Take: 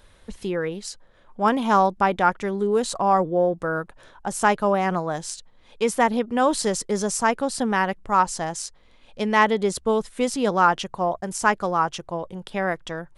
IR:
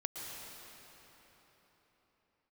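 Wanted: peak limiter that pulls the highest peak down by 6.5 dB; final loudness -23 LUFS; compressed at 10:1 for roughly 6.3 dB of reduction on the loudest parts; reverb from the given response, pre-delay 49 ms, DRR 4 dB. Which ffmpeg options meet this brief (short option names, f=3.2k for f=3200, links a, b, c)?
-filter_complex "[0:a]acompressor=threshold=-19dB:ratio=10,alimiter=limit=-16.5dB:level=0:latency=1,asplit=2[a][b];[1:a]atrim=start_sample=2205,adelay=49[c];[b][c]afir=irnorm=-1:irlink=0,volume=-5dB[d];[a][d]amix=inputs=2:normalize=0,volume=3.5dB"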